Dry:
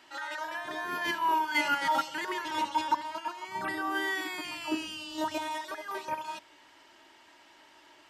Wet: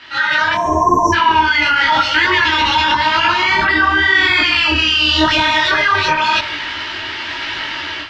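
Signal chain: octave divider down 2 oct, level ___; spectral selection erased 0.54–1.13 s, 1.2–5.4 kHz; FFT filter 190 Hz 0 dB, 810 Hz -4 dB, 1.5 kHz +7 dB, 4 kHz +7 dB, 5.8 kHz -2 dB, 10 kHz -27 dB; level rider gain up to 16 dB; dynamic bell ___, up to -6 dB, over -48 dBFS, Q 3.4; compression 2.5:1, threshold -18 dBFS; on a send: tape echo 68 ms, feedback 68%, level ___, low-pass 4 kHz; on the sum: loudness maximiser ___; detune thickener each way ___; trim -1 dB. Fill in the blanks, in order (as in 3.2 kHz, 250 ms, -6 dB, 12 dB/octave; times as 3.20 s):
-3 dB, 170 Hz, -21 dB, +18 dB, 32 cents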